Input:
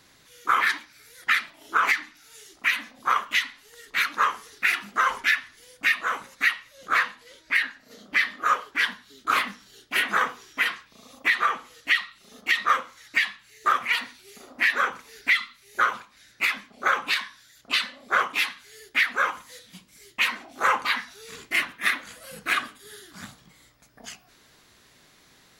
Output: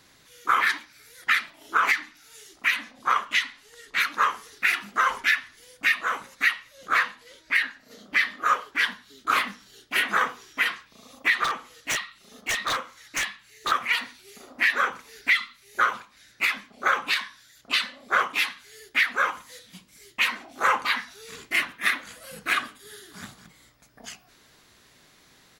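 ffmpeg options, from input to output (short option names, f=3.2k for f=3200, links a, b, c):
-filter_complex "[0:a]asettb=1/sr,asplit=3[a][b][c];[a]atrim=end=2.744[d];[b]atrim=start=2.74:end=4,asetpts=PTS-STARTPTS,afade=t=in:d=0.004:c=qsin,afade=t=out:st=1.256:d=0.004:c=qsin,lowpass=11k[e];[c]atrim=start=3.996[f];[d][e]acrossfade=d=0.004:c1=hsin:c2=qsin[g];[g][f]acrossfade=d=0.004:c1=qsin:c2=hsin,asettb=1/sr,asplit=3[h][i][j];[h]atrim=end=11.444[k];[i]atrim=start=11.44:end=13.72,asetpts=PTS-STARTPTS,afade=t=in:d=0.004:c=qsin,afade=t=out:st=2.276:d=0.004:c=qsin,aeval=exprs='0.1*(abs(mod(val(0)/0.1+3,4)-2)-1)':c=same[l];[j]atrim=start=13.716[m];[k][l]acrossfade=d=0.004:c1=hsin:c2=qsin[n];[n][m]acrossfade=d=0.004:c1=qsin:c2=hsin,asplit=2[o][p];[p]afade=t=in:st=22.79:d=0.01,afade=t=out:st=23.23:d=0.01,aecho=0:1:230|460:0.298538|0.0447807[q];[o][q]amix=inputs=2:normalize=0"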